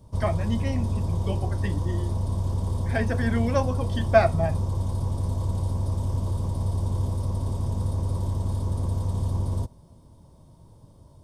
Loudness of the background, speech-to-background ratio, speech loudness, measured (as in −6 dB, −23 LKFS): −28.0 LKFS, 0.0 dB, −28.0 LKFS